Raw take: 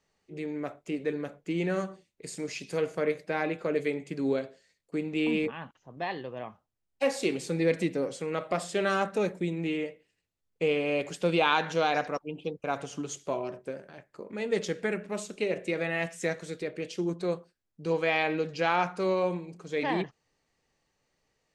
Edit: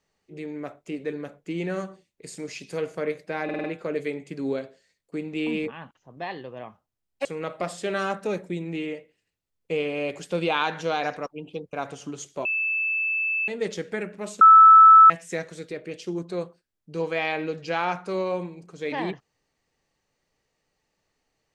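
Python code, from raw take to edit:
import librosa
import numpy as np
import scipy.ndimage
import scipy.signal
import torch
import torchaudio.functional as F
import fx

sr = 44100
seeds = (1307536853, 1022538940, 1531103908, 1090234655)

y = fx.edit(x, sr, fx.stutter(start_s=3.44, slice_s=0.05, count=5),
    fx.cut(start_s=7.05, length_s=1.11),
    fx.bleep(start_s=13.36, length_s=1.03, hz=2630.0, db=-22.5),
    fx.bleep(start_s=15.32, length_s=0.69, hz=1310.0, db=-7.5), tone=tone)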